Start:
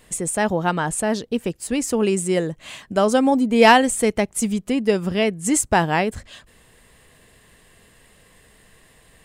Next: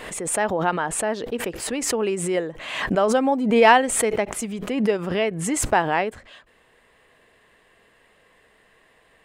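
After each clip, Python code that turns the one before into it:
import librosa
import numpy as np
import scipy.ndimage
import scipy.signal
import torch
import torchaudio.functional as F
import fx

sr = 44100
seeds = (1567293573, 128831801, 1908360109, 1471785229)

y = fx.bass_treble(x, sr, bass_db=-13, treble_db=-14)
y = fx.pre_swell(y, sr, db_per_s=51.0)
y = F.gain(torch.from_numpy(y), -1.0).numpy()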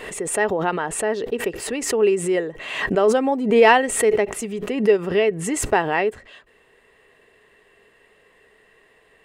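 y = fx.small_body(x, sr, hz=(410.0, 1900.0, 2700.0), ring_ms=45, db=10)
y = F.gain(torch.from_numpy(y), -1.0).numpy()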